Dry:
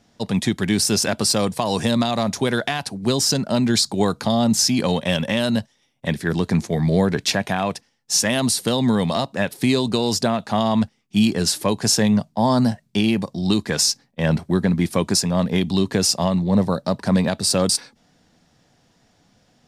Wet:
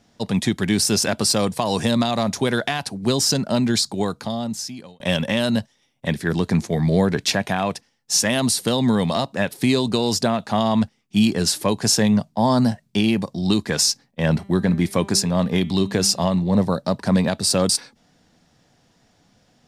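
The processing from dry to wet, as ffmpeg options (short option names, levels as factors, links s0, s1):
-filter_complex "[0:a]asplit=3[s0][s1][s2];[s0]afade=t=out:st=14.36:d=0.02[s3];[s1]bandreject=f=197.6:t=h:w=4,bandreject=f=395.2:t=h:w=4,bandreject=f=592.8:t=h:w=4,bandreject=f=790.4:t=h:w=4,bandreject=f=988:t=h:w=4,bandreject=f=1185.6:t=h:w=4,bandreject=f=1383.2:t=h:w=4,bandreject=f=1580.8:t=h:w=4,bandreject=f=1778.4:t=h:w=4,bandreject=f=1976:t=h:w=4,bandreject=f=2173.6:t=h:w=4,bandreject=f=2371.2:t=h:w=4,bandreject=f=2568.8:t=h:w=4,bandreject=f=2766.4:t=h:w=4,bandreject=f=2964:t=h:w=4,bandreject=f=3161.6:t=h:w=4,bandreject=f=3359.2:t=h:w=4,bandreject=f=3556.8:t=h:w=4,bandreject=f=3754.4:t=h:w=4,bandreject=f=3952:t=h:w=4,bandreject=f=4149.6:t=h:w=4,afade=t=in:st=14.36:d=0.02,afade=t=out:st=16.56:d=0.02[s4];[s2]afade=t=in:st=16.56:d=0.02[s5];[s3][s4][s5]amix=inputs=3:normalize=0,asplit=2[s6][s7];[s6]atrim=end=5,asetpts=PTS-STARTPTS,afade=t=out:st=3.51:d=1.49[s8];[s7]atrim=start=5,asetpts=PTS-STARTPTS,afade=t=in:d=0.004:c=hsin[s9];[s8][s9]concat=n=2:v=0:a=1"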